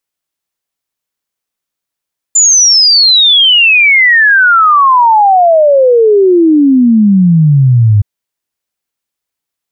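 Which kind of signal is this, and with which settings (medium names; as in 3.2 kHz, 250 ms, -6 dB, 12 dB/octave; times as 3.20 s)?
log sweep 7.2 kHz -> 100 Hz 5.67 s -3 dBFS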